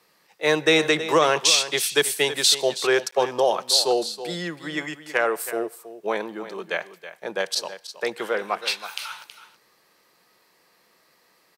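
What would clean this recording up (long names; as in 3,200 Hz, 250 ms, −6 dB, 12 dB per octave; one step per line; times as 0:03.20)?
clipped peaks rebuilt −7 dBFS
repair the gap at 0:03.11, 14 ms
echo removal 323 ms −13 dB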